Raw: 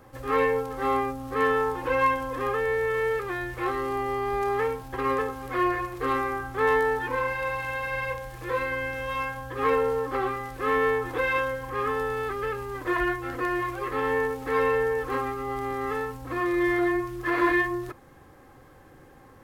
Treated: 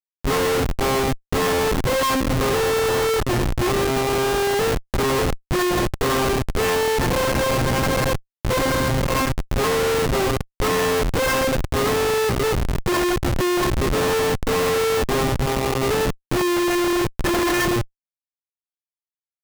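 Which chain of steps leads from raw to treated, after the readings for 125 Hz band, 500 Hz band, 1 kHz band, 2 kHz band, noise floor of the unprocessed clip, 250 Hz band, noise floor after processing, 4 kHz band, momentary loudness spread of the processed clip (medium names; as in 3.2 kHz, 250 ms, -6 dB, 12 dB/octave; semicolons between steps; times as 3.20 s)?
+14.5 dB, +6.0 dB, +3.5 dB, +3.0 dB, -52 dBFS, +8.0 dB, under -85 dBFS, +17.5 dB, 3 LU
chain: treble shelf 10 kHz -10.5 dB; Schmitt trigger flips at -28 dBFS; trim +8 dB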